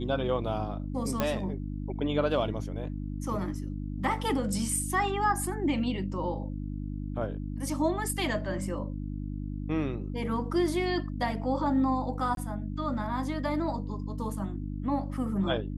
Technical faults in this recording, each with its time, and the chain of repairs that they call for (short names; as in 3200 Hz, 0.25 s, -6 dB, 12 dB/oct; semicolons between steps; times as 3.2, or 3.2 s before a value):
hum 50 Hz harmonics 6 -35 dBFS
1.2 pop -13 dBFS
12.35–12.37 gap 22 ms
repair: de-click; de-hum 50 Hz, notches 6; interpolate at 12.35, 22 ms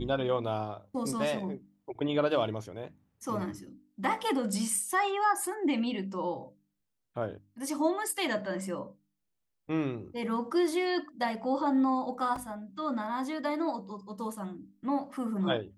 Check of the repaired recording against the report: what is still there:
none